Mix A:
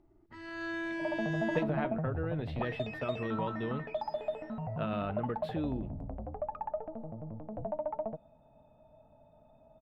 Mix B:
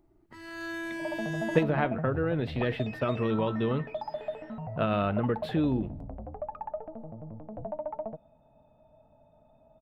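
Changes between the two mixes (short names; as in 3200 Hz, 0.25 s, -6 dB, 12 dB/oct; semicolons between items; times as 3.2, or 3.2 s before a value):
speech +8.0 dB; first sound: remove air absorption 120 m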